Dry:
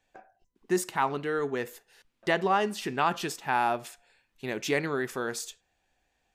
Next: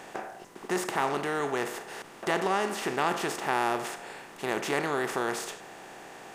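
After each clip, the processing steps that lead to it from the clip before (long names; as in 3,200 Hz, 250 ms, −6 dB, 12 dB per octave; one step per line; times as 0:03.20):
compressor on every frequency bin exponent 0.4
level −6 dB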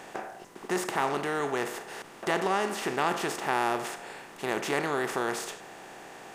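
no processing that can be heard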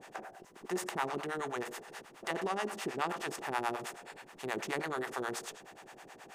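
two-band tremolo in antiphase 9.4 Hz, depth 100%, crossover 550 Hz
level −2.5 dB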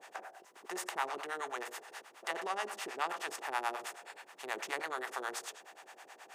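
high-pass filter 560 Hz 12 dB per octave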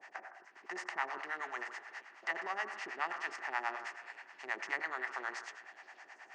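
loudspeaker in its box 150–5,800 Hz, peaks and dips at 480 Hz −9 dB, 1,900 Hz +9 dB, 3,600 Hz −10 dB
echo through a band-pass that steps 159 ms, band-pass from 1,200 Hz, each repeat 0.7 octaves, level −11 dB
level −2.5 dB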